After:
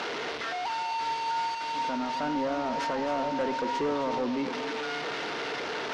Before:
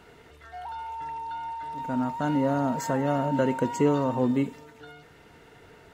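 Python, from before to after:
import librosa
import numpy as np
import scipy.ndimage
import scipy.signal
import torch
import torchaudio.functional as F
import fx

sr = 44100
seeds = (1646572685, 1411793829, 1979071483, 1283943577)

p1 = fx.delta_mod(x, sr, bps=32000, step_db=-32.0)
p2 = fx.bandpass_edges(p1, sr, low_hz=320.0, high_hz=4700.0)
p3 = fx.over_compress(p2, sr, threshold_db=-35.0, ratio=-0.5)
p4 = p2 + F.gain(torch.from_numpy(p3), -3.0).numpy()
p5 = 10.0 ** (-24.0 / 20.0) * np.tanh(p4 / 10.0 ** (-24.0 / 20.0))
y = p5 + fx.echo_single(p5, sr, ms=262, db=-11.0, dry=0)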